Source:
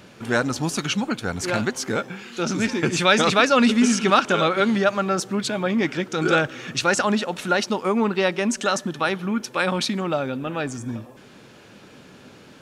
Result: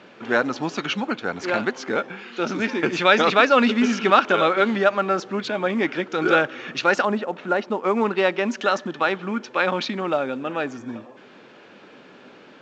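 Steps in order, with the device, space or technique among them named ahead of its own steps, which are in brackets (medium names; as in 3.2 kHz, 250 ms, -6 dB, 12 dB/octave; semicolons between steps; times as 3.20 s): 7.05–7.84 s: low-pass 1.1 kHz 6 dB/octave; telephone (band-pass 270–3200 Hz; trim +2 dB; A-law 128 kbps 16 kHz)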